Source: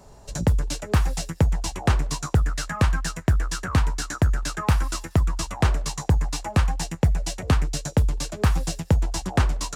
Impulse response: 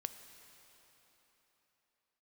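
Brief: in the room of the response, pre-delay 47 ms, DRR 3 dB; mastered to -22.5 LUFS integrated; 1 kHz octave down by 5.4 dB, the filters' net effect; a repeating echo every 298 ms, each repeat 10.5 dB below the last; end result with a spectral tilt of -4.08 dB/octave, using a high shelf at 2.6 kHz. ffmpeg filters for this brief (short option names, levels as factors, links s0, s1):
-filter_complex "[0:a]equalizer=f=1000:t=o:g=-8.5,highshelf=f=2600:g=7,aecho=1:1:298|596|894:0.299|0.0896|0.0269,asplit=2[s0][s1];[1:a]atrim=start_sample=2205,adelay=47[s2];[s1][s2]afir=irnorm=-1:irlink=0,volume=0.891[s3];[s0][s3]amix=inputs=2:normalize=0,volume=0.944"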